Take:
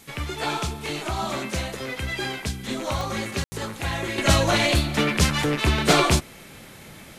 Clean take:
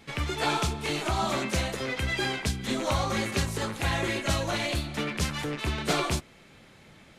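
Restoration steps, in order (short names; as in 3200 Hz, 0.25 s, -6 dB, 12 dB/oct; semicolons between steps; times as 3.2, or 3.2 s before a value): de-click; room tone fill 3.44–3.52; noise print and reduce 9 dB; gain correction -9 dB, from 4.18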